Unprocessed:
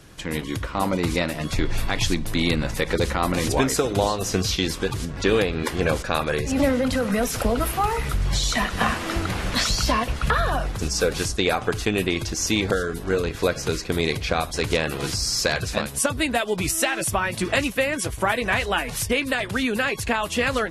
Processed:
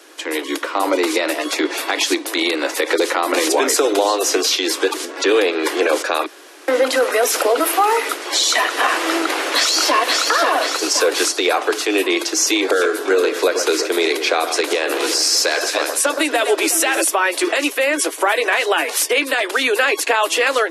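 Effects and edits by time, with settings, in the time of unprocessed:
6.26–6.68 room tone
9.22–10.26 echo throw 0.53 s, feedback 50%, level -4.5 dB
12.57–17.02 echo with dull and thin repeats by turns 0.12 s, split 1700 Hz, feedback 70%, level -11 dB
whole clip: steep high-pass 290 Hz 96 dB/oct; AGC gain up to 3 dB; limiter -13.5 dBFS; gain +7 dB

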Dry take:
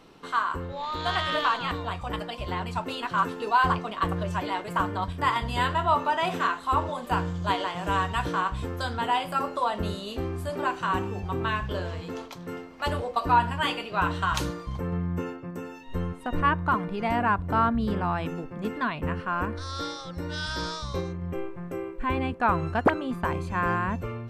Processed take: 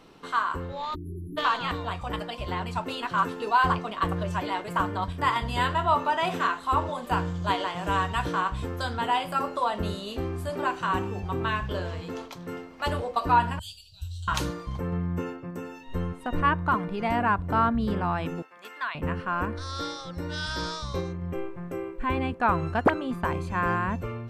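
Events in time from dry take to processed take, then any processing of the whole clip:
0.95–1.38 spectral delete 450–10000 Hz
13.59–14.28 inverse Chebyshev band-stop 190–2200 Hz
18.42–18.95 HPF 1100 Hz

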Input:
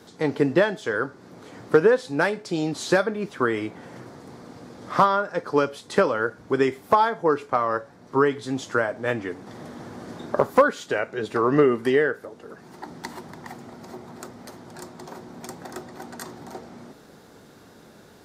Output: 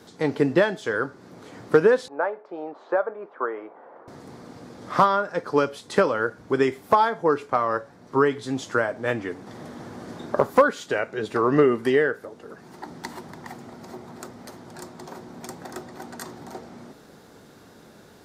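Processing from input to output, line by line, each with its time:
2.08–4.08 Butterworth band-pass 780 Hz, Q 0.96

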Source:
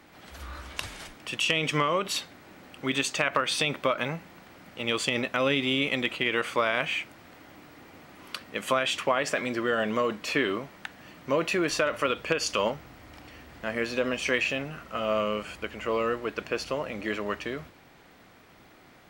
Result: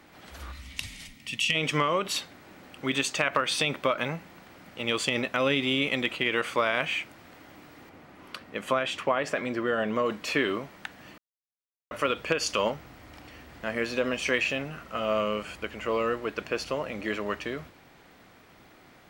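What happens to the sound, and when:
0.52–1.55 spectral gain 280–1800 Hz -13 dB
7.89–10.06 high shelf 2900 Hz -8 dB
11.18–11.91 mute

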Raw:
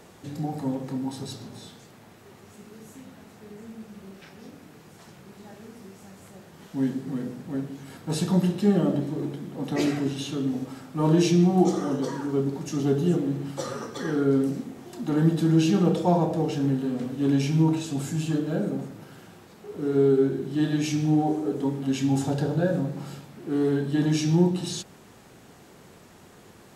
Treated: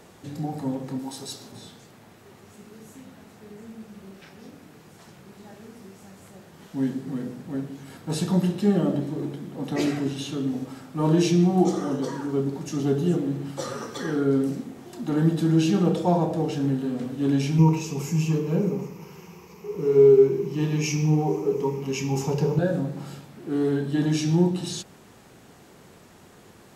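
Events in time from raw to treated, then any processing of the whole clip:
0.99–1.52 tone controls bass -10 dB, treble +6 dB
13.62–14.55 mismatched tape noise reduction encoder only
17.58–22.59 ripple EQ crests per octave 0.79, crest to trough 14 dB

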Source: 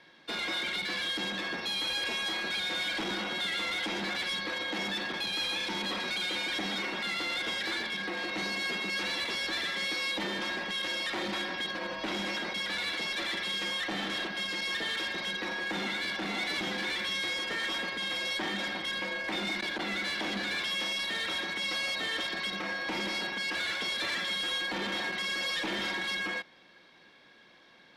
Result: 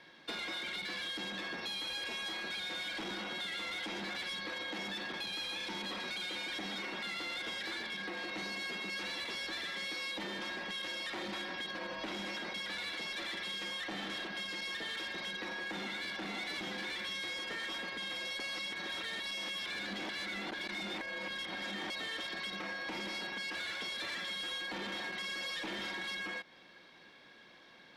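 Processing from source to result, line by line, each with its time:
18.4–21.9 reverse
whole clip: compressor, threshold -38 dBFS

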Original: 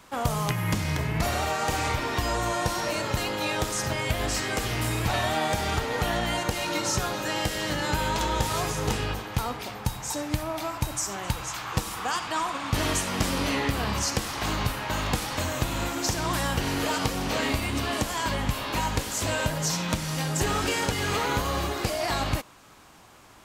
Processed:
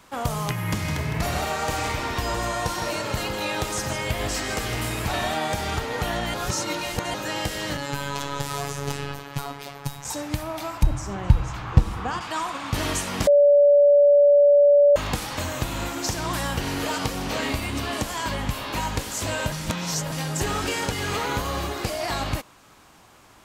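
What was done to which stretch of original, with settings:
0.57–5.34 echo 0.159 s -7.5 dB
6.34–7.14 reverse
7.77–10.05 robotiser 141 Hz
10.83–12.21 RIAA curve playback
13.27–14.96 bleep 576 Hz -11.5 dBFS
19.52–20.12 reverse

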